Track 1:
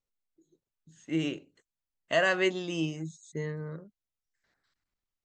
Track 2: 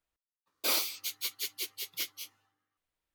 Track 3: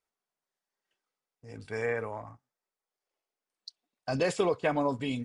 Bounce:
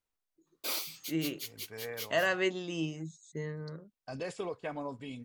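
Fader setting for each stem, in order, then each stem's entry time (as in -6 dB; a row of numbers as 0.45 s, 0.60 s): -3.5 dB, -6.0 dB, -10.5 dB; 0.00 s, 0.00 s, 0.00 s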